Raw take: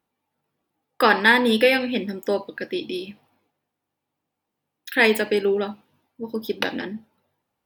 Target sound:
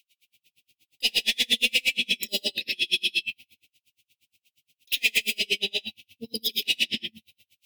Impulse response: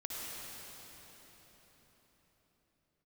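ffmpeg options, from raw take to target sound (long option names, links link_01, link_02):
-filter_complex "[0:a]equalizer=frequency=2600:width=1.7:gain=13,asplit=2[link_01][link_02];[link_02]asoftclip=type=hard:threshold=-14.5dB,volume=-4.5dB[link_03];[link_01][link_03]amix=inputs=2:normalize=0[link_04];[1:a]atrim=start_sample=2205,afade=type=out:start_time=0.26:duration=0.01,atrim=end_sample=11907[link_05];[link_04][link_05]afir=irnorm=-1:irlink=0,acrossover=split=150[link_06][link_07];[link_06]dynaudnorm=framelen=180:gausssize=3:maxgain=15.5dB[link_08];[link_07]aexciter=amount=14.1:drive=9.7:freq=2600[link_09];[link_08][link_09]amix=inputs=2:normalize=0,acompressor=threshold=-8dB:ratio=3,asoftclip=type=tanh:threshold=-2.5dB,asuperstop=centerf=1200:order=8:qfactor=1.1,highshelf=frequency=4000:gain=-5.5,aeval=exprs='val(0)*pow(10,-38*(0.5-0.5*cos(2*PI*8.5*n/s))/20)':channel_layout=same,volume=-7dB"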